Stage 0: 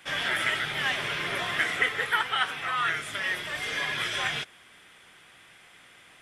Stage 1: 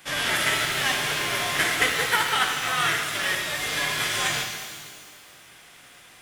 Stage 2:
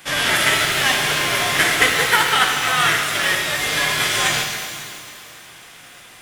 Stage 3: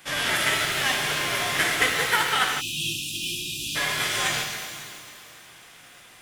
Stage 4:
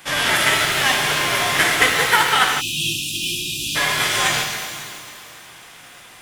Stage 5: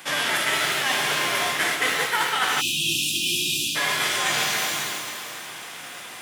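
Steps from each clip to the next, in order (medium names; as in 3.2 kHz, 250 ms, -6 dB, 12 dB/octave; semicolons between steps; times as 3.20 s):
formants flattened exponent 0.6; pitch-shifted reverb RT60 1.7 s, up +12 st, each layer -8 dB, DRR 2.5 dB; trim +2 dB
echo whose repeats swap between lows and highs 137 ms, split 1.1 kHz, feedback 77%, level -14 dB; trim +6.5 dB
spectral selection erased 2.61–3.76 s, 370–2400 Hz; trim -6.5 dB
peaking EQ 930 Hz +3 dB 0.61 oct; trim +6 dB
high-pass 170 Hz 12 dB/octave; reverse; compression 6:1, threshold -26 dBFS, peak gain reduction 15 dB; reverse; trim +5 dB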